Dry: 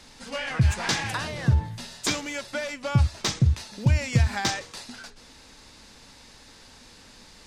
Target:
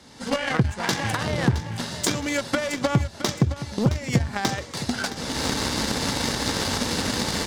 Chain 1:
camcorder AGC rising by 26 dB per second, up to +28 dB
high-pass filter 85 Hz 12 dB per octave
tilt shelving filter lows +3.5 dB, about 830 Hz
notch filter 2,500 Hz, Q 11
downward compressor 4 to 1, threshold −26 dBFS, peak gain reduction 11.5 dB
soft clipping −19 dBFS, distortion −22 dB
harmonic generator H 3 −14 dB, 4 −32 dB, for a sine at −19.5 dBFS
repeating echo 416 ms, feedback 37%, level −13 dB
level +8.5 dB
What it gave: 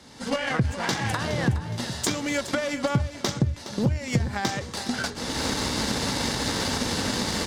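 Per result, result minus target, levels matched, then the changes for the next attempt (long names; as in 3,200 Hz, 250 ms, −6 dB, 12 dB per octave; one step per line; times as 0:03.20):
soft clipping: distortion +19 dB; echo 251 ms early
change: soft clipping −8.5 dBFS, distortion −41 dB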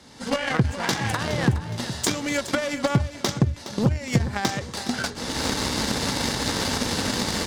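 echo 251 ms early
change: repeating echo 667 ms, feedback 37%, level −13 dB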